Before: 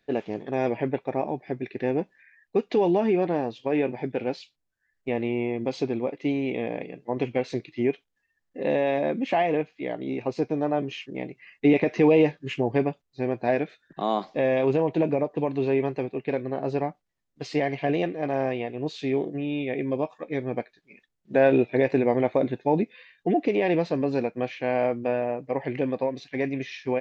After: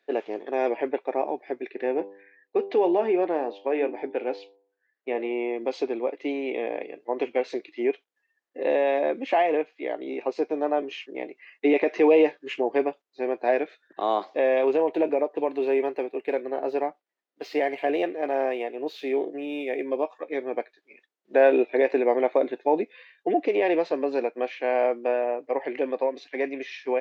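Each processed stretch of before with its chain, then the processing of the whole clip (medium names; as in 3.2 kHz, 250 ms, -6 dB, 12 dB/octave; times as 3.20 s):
1.70–5.31 s: distance through air 110 m + de-hum 98.87 Hz, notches 11
14.78–19.88 s: median filter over 5 samples + band-stop 1.1 kHz, Q 17
whole clip: high-pass 330 Hz 24 dB/octave; treble shelf 4.5 kHz -8.5 dB; trim +2 dB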